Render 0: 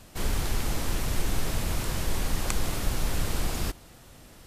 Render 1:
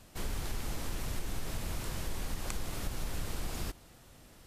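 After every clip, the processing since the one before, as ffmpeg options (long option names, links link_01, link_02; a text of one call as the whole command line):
ffmpeg -i in.wav -af "acompressor=threshold=-26dB:ratio=2.5,volume=-6dB" out.wav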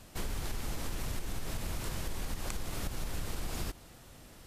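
ffmpeg -i in.wav -af "acompressor=threshold=-34dB:ratio=6,volume=3dB" out.wav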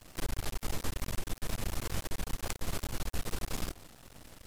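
ffmpeg -i in.wav -af "aeval=exprs='max(val(0),0)':channel_layout=same,volume=4.5dB" out.wav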